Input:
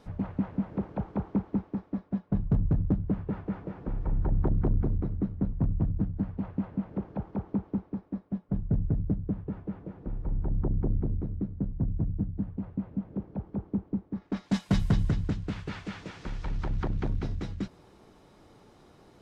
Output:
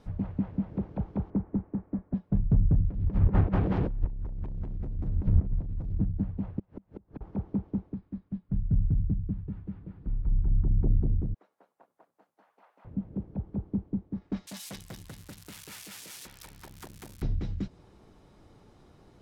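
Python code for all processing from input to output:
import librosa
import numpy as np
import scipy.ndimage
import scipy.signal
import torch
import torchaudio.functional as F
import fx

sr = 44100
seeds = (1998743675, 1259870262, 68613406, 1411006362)

y = fx.chain(x, sr, fx.lowpass(hz=2000.0, slope=24),
    fx.band_squash(depth_pct=40), at=(1.3, 2.14))
y = fx.chain(y, sr, fx.leveller(passes=3),
    fx.over_compress(threshold_db=-28.0, ratio=-0.5),
    fx.doppler_dist(depth_ms=0.37), at=(2.88, 5.98))
y = fx.chain(y, sr, fx.gate_flip(shuts_db=-28.0, range_db=-30),
    fx.band_squash(depth_pct=100), at=(6.59, 7.21))
y = fx.chain(y, sr, fx.brickwall_lowpass(high_hz=5200.0),
    fx.peak_eq(hz=570.0, db=-10.5, octaves=1.8), at=(7.94, 10.78))
y = fx.chain(y, sr, fx.highpass(hz=710.0, slope=24),
    fx.high_shelf(hz=4700.0, db=9.0), at=(11.34, 12.85))
y = fx.chain(y, sr, fx.crossing_spikes(level_db=-28.5),
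    fx.highpass(hz=990.0, slope=6),
    fx.transformer_sat(knee_hz=1400.0), at=(14.47, 17.22))
y = fx.low_shelf(y, sr, hz=150.0, db=9.0)
y = fx.env_lowpass_down(y, sr, base_hz=2200.0, full_db=-15.5)
y = fx.dynamic_eq(y, sr, hz=1300.0, q=1.0, threshold_db=-50.0, ratio=4.0, max_db=-4)
y = y * 10.0 ** (-3.5 / 20.0)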